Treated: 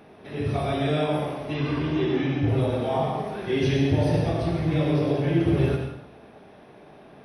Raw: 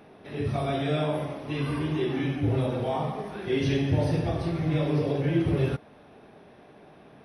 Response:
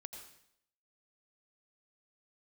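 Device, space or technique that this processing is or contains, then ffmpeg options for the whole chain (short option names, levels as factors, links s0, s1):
bathroom: -filter_complex "[1:a]atrim=start_sample=2205[s0];[0:a][s0]afir=irnorm=-1:irlink=0,asettb=1/sr,asplit=3[s1][s2][s3];[s1]atrim=end=1.544[s4];[s2]atrim=start=1.54:end=2.49,asetpts=PTS-STARTPTS,afade=t=in:d=0.004:c=qsin,afade=t=out:st=0.946:d=0.004:c=qsin,lowpass=f=6700:w=0.5412,lowpass=f=6700:w=1.3066[s5];[s3]atrim=start=2.486[s6];[s4][s5]acrossfade=d=0.004:c1=hsin:c2=qsin[s7];[s7][s6]acrossfade=d=0.004:c1=qsin:c2=hsin,volume=2.37"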